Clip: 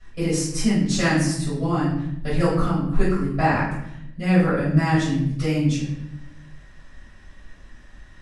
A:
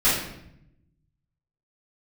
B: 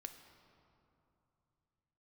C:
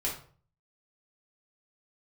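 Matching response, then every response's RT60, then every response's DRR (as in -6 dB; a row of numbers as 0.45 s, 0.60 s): A; 0.75 s, 2.9 s, 0.45 s; -14.0 dB, 6.0 dB, -5.0 dB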